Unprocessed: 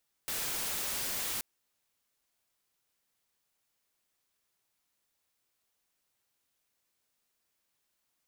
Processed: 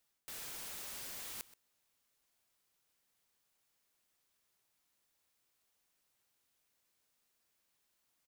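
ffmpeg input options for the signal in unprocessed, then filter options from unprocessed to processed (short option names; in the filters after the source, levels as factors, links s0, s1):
-f lavfi -i "anoisesrc=c=white:a=0.0308:d=1.13:r=44100:seed=1"
-af "areverse,acompressor=threshold=0.00631:ratio=12,areverse,aecho=1:1:127:0.126"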